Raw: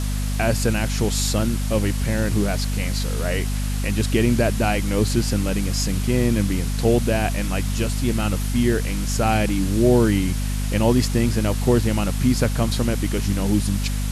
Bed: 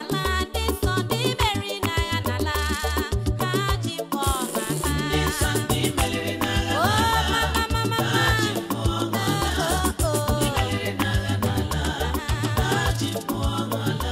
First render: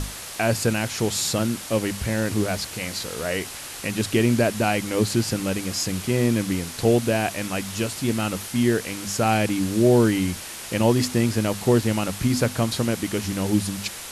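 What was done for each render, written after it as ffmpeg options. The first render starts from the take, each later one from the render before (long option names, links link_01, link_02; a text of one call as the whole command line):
ffmpeg -i in.wav -af "bandreject=frequency=50:width_type=h:width=6,bandreject=frequency=100:width_type=h:width=6,bandreject=frequency=150:width_type=h:width=6,bandreject=frequency=200:width_type=h:width=6,bandreject=frequency=250:width_type=h:width=6" out.wav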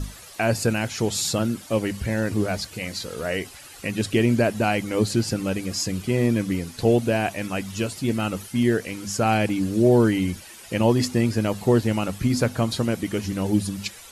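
ffmpeg -i in.wav -af "afftdn=noise_reduction=12:noise_floor=-36" out.wav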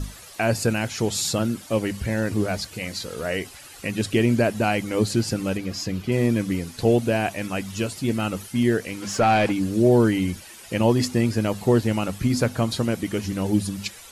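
ffmpeg -i in.wav -filter_complex "[0:a]asettb=1/sr,asplit=3[link_01][link_02][link_03];[link_01]atrim=end=5.574[link_04];[link_02]atrim=start=5.57:end=6.12,asetpts=PTS-STARTPTS,afade=type=in:duration=0.004:curve=qsin,afade=type=out:start_time=0.546:duration=0.004:curve=qsin,equalizer=frequency=8800:width=1.1:gain=-11[link_05];[link_03]atrim=start=6.116[link_06];[link_04][link_05]acrossfade=duration=0.004:curve1=hsin:curve2=qsin[link_07];[link_07][link_06]acrossfade=duration=0.004:curve1=qsin:curve2=hsin,asplit=3[link_08][link_09][link_10];[link_08]afade=type=out:start_time=9.01:duration=0.02[link_11];[link_09]asplit=2[link_12][link_13];[link_13]highpass=frequency=720:poles=1,volume=17dB,asoftclip=type=tanh:threshold=-9.5dB[link_14];[link_12][link_14]amix=inputs=2:normalize=0,lowpass=frequency=1900:poles=1,volume=-6dB,afade=type=in:start_time=9.01:duration=0.02,afade=type=out:start_time=9.51:duration=0.02[link_15];[link_10]afade=type=in:start_time=9.51:duration=0.02[link_16];[link_11][link_15][link_16]amix=inputs=3:normalize=0" out.wav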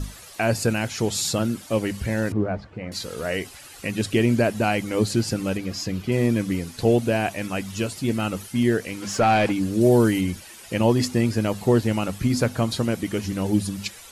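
ffmpeg -i in.wav -filter_complex "[0:a]asettb=1/sr,asplit=3[link_01][link_02][link_03];[link_01]atrim=end=2.324[link_04];[link_02]atrim=start=2.32:end=2.92,asetpts=PTS-STARTPTS,afade=type=in:duration=0.004:curve=qsin,afade=type=out:start_time=0.596:duration=0.004:curve=qsin,lowpass=1300[link_05];[link_03]atrim=start=2.916[link_06];[link_04][link_05]acrossfade=duration=0.004:curve1=hsin:curve2=qsin[link_07];[link_07][link_06]acrossfade=duration=0.004:curve1=qsin:curve2=hsin,asettb=1/sr,asplit=3[link_08][link_09][link_10];[link_08]atrim=end=9.814[link_11];[link_09]atrim=start=9.81:end=10.21,asetpts=PTS-STARTPTS,afade=type=in:duration=0.004:curve=qsin,afade=type=out:start_time=0.396:duration=0.004:curve=qsin,highshelf=frequency=7100:gain=9[link_12];[link_10]atrim=start=10.206[link_13];[link_11][link_12]acrossfade=duration=0.004:curve1=hsin:curve2=qsin[link_14];[link_14][link_13]acrossfade=duration=0.004:curve1=qsin:curve2=hsin" out.wav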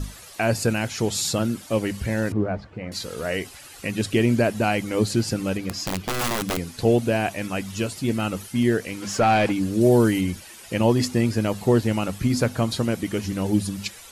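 ffmpeg -i in.wav -filter_complex "[0:a]asettb=1/sr,asplit=3[link_01][link_02][link_03];[link_01]atrim=end=5.694[link_04];[link_02]atrim=start=5.69:end=6.57,asetpts=PTS-STARTPTS,afade=type=in:duration=0.004:curve=qsin,afade=type=out:start_time=0.876:duration=0.004:curve=qsin,aeval=exprs='(mod(8.91*val(0)+1,2)-1)/8.91':channel_layout=same[link_05];[link_03]atrim=start=6.566[link_06];[link_04][link_05]acrossfade=duration=0.004:curve1=hsin:curve2=qsin[link_07];[link_07][link_06]acrossfade=duration=0.004:curve1=qsin:curve2=hsin" out.wav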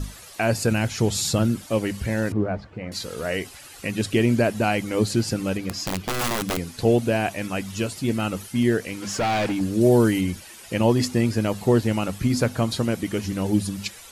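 ffmpeg -i in.wav -filter_complex "[0:a]asettb=1/sr,asplit=3[link_01][link_02][link_03];[link_01]atrim=end=0.714[link_04];[link_02]atrim=start=0.71:end=1.66,asetpts=PTS-STARTPTS,afade=type=in:duration=0.004:curve=qsin,afade=type=out:start_time=0.946:duration=0.004:curve=qsin,lowshelf=frequency=140:gain=9[link_05];[link_03]atrim=start=1.656[link_06];[link_04][link_05]acrossfade=duration=0.004:curve1=hsin:curve2=qsin[link_07];[link_07][link_06]acrossfade=duration=0.004:curve1=qsin:curve2=hsin,asettb=1/sr,asplit=3[link_08][link_09][link_10];[link_08]atrim=end=8.894[link_11];[link_09]atrim=start=8.89:end=9.61,asetpts=PTS-STARTPTS,afade=type=in:duration=0.004:curve=qsin,afade=type=out:start_time=0.716:duration=0.004:curve=qsin,asoftclip=type=hard:threshold=-20.5dB[link_12];[link_10]atrim=start=9.606[link_13];[link_11][link_12]acrossfade=duration=0.004:curve1=hsin:curve2=qsin[link_14];[link_14][link_13]acrossfade=duration=0.004:curve1=qsin:curve2=hsin" out.wav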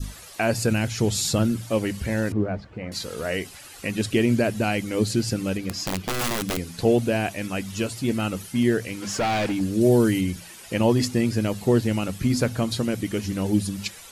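ffmpeg -i in.wav -af "bandreject=frequency=57.41:width_type=h:width=4,bandreject=frequency=114.82:width_type=h:width=4,bandreject=frequency=172.23:width_type=h:width=4,adynamicequalizer=threshold=0.0141:dfrequency=930:dqfactor=0.92:tfrequency=930:tqfactor=0.92:attack=5:release=100:ratio=0.375:range=3:mode=cutabove:tftype=bell" out.wav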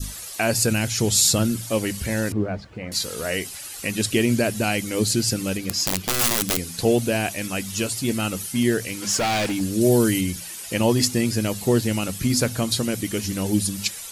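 ffmpeg -i in.wav -af "highshelf=frequency=3900:gain=11.5" out.wav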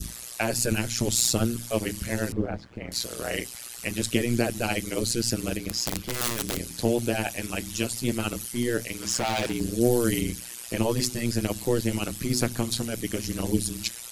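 ffmpeg -i in.wav -filter_complex "[0:a]tremolo=f=120:d=1,acrossover=split=380[link_01][link_02];[link_02]asoftclip=type=tanh:threshold=-12.5dB[link_03];[link_01][link_03]amix=inputs=2:normalize=0" out.wav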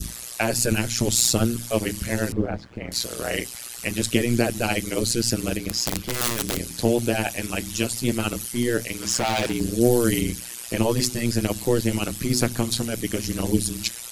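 ffmpeg -i in.wav -af "volume=3.5dB" out.wav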